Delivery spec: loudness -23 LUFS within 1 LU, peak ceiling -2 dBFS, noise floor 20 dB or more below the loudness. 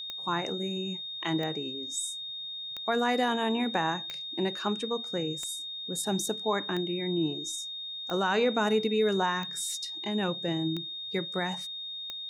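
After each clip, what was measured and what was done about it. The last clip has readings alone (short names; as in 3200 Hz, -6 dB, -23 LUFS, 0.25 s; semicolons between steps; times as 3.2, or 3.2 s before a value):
clicks 10; steady tone 3700 Hz; tone level -36 dBFS; loudness -30.5 LUFS; peak -15.5 dBFS; loudness target -23.0 LUFS
-> de-click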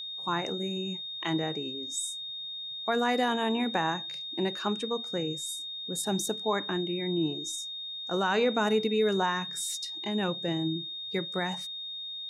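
clicks 0; steady tone 3700 Hz; tone level -36 dBFS
-> notch 3700 Hz, Q 30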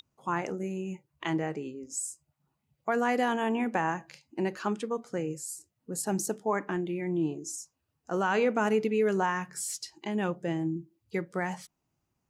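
steady tone none; loudness -31.5 LUFS; peak -16.0 dBFS; loudness target -23.0 LUFS
-> gain +8.5 dB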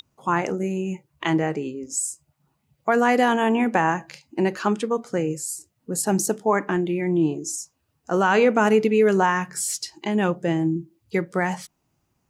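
loudness -23.0 LUFS; peak -7.5 dBFS; noise floor -73 dBFS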